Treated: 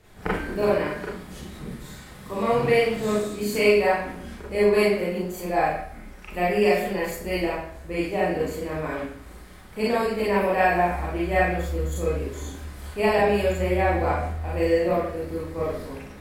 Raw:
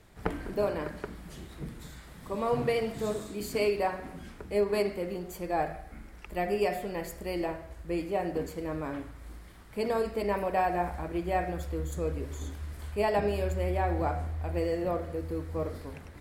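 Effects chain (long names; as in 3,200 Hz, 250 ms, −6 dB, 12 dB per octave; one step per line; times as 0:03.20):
dynamic equaliser 2,200 Hz, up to +6 dB, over −49 dBFS, Q 1.4
four-comb reverb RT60 0.38 s, combs from 30 ms, DRR −6 dB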